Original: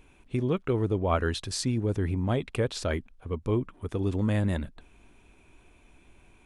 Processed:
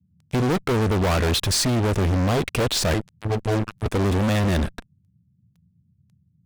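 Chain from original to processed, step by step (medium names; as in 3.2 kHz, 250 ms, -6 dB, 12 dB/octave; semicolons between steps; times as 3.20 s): 2.94–3.86 s: robot voice 108 Hz; fuzz box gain 39 dB, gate -45 dBFS; band noise 75–190 Hz -56 dBFS; trim -5.5 dB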